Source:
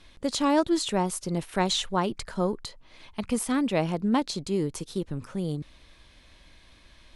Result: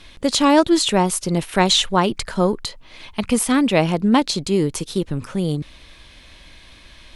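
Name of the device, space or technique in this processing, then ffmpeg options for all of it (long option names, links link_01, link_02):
presence and air boost: -af "equalizer=frequency=2800:width_type=o:width=1.2:gain=3.5,highshelf=frequency=9700:gain=3.5,volume=8.5dB"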